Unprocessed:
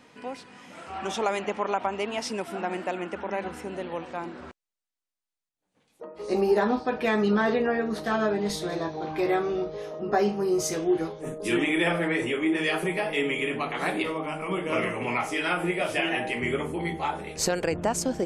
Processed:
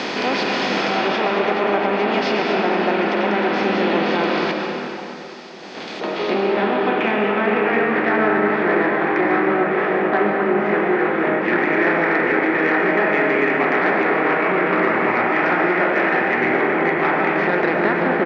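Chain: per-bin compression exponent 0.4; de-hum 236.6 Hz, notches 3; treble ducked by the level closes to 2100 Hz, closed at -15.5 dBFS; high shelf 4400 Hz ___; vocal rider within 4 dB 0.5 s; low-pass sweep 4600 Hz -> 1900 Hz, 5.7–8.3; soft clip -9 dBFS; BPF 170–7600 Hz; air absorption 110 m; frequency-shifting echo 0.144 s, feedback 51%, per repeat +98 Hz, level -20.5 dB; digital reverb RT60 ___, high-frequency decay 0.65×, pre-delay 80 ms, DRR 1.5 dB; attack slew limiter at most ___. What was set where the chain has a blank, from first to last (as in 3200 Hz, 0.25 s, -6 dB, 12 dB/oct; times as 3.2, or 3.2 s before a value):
+6.5 dB, 3.1 s, 130 dB/s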